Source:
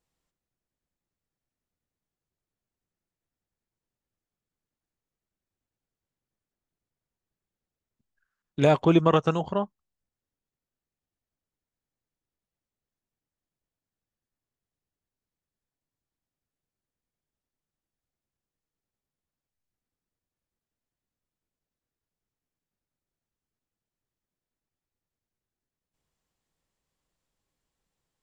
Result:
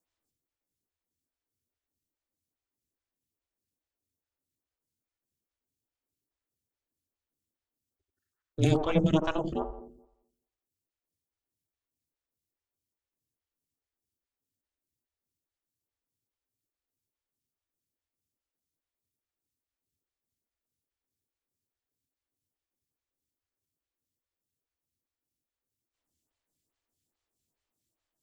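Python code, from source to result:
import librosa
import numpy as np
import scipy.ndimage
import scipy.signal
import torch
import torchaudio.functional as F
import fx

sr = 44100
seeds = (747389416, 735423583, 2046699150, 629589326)

p1 = scipy.signal.sosfilt(scipy.signal.butter(4, 76.0, 'highpass', fs=sr, output='sos'), x)
p2 = fx.high_shelf(p1, sr, hz=2500.0, db=11.0)
p3 = p2 * np.sin(2.0 * np.pi * 160.0 * np.arange(len(p2)) / sr)
p4 = fx.peak_eq(p3, sr, hz=100.0, db=12.5, octaves=1.7)
p5 = p4 + fx.echo_wet_lowpass(p4, sr, ms=86, feedback_pct=49, hz=550.0, wet_db=-4.0, dry=0)
p6 = fx.stagger_phaser(p5, sr, hz=2.4)
y = p6 * librosa.db_to_amplitude(-2.5)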